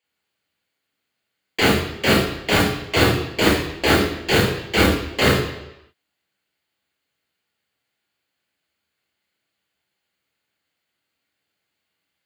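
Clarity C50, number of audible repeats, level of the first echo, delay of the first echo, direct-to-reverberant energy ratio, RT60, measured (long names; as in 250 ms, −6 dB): 3.5 dB, no echo audible, no echo audible, no echo audible, −3.0 dB, 0.85 s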